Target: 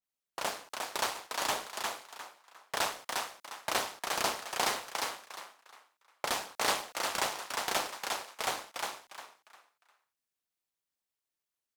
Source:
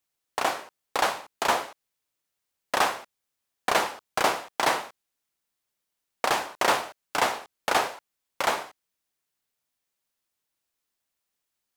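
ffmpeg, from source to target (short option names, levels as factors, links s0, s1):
-filter_complex "[0:a]asplit=5[s0][s1][s2][s3][s4];[s1]adelay=354,afreqshift=70,volume=0.668[s5];[s2]adelay=708,afreqshift=140,volume=0.207[s6];[s3]adelay=1062,afreqshift=210,volume=0.0646[s7];[s4]adelay=1416,afreqshift=280,volume=0.02[s8];[s0][s5][s6][s7][s8]amix=inputs=5:normalize=0,aeval=exprs='val(0)*sin(2*PI*100*n/s)':c=same,adynamicequalizer=threshold=0.00708:dfrequency=2900:dqfactor=0.7:tfrequency=2900:tqfactor=0.7:attack=5:release=100:ratio=0.375:range=4:mode=boostabove:tftype=highshelf,volume=0.447"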